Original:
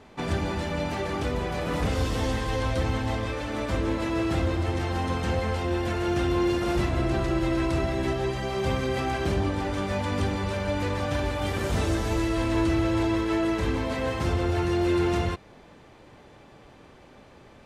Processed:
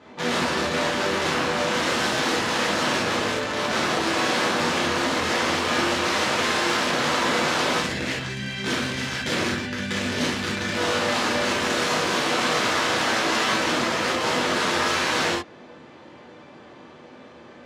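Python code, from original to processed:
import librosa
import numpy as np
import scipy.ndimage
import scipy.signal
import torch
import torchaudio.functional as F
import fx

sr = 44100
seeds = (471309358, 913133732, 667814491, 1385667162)

y = fx.spec_box(x, sr, start_s=7.79, length_s=2.97, low_hz=270.0, high_hz=1400.0, gain_db=-17)
y = (np.mod(10.0 ** (23.5 / 20.0) * y + 1.0, 2.0) - 1.0) / 10.0 ** (23.5 / 20.0)
y = fx.bandpass_edges(y, sr, low_hz=170.0, high_hz=5600.0)
y = fx.rev_gated(y, sr, seeds[0], gate_ms=90, shape='flat', drr_db=-5.5)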